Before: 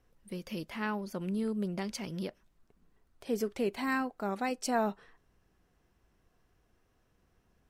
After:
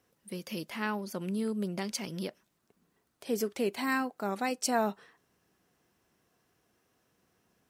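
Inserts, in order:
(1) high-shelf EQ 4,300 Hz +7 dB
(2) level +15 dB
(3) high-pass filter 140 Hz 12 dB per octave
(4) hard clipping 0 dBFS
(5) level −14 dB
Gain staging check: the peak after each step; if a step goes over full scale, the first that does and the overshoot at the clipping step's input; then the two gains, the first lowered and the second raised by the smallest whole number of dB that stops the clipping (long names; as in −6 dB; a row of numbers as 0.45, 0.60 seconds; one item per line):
−17.0, −2.0, −1.5, −1.5, −15.5 dBFS
no step passes full scale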